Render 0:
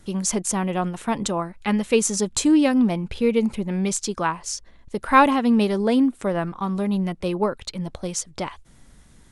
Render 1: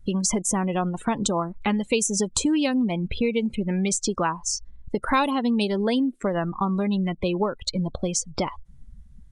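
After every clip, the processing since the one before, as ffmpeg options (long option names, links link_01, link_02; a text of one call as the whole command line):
ffmpeg -i in.wav -filter_complex "[0:a]acrossover=split=1400|3500[link_01][link_02][link_03];[link_01]acompressor=threshold=-31dB:ratio=4[link_04];[link_02]acompressor=threshold=-44dB:ratio=4[link_05];[link_03]acompressor=threshold=-32dB:ratio=4[link_06];[link_04][link_05][link_06]amix=inputs=3:normalize=0,afftdn=noise_reduction=27:noise_floor=-39,volume=8dB" out.wav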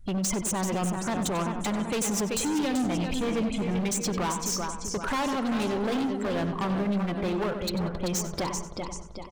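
ffmpeg -i in.wav -filter_complex "[0:a]asplit=2[link_01][link_02];[link_02]aecho=0:1:386|772|1158|1544|1930:0.355|0.16|0.0718|0.0323|0.0145[link_03];[link_01][link_03]amix=inputs=2:normalize=0,volume=26dB,asoftclip=hard,volume=-26dB,asplit=2[link_04][link_05];[link_05]adelay=94,lowpass=frequency=3600:poles=1,volume=-9dB,asplit=2[link_06][link_07];[link_07]adelay=94,lowpass=frequency=3600:poles=1,volume=0.38,asplit=2[link_08][link_09];[link_09]adelay=94,lowpass=frequency=3600:poles=1,volume=0.38,asplit=2[link_10][link_11];[link_11]adelay=94,lowpass=frequency=3600:poles=1,volume=0.38[link_12];[link_06][link_08][link_10][link_12]amix=inputs=4:normalize=0[link_13];[link_04][link_13]amix=inputs=2:normalize=0" out.wav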